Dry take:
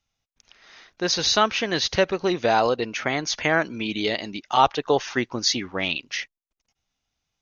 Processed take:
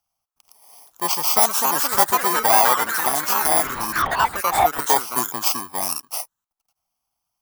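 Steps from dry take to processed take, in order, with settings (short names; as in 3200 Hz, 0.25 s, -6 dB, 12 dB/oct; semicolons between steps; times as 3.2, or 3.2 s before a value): FFT order left unsorted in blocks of 32 samples; 4.02–4.79 LPC vocoder at 8 kHz whisper; band shelf 970 Hz +14 dB 1.2 oct; echoes that change speed 0.555 s, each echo +4 st, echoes 3; tilt +1.5 dB/oct; gain -3.5 dB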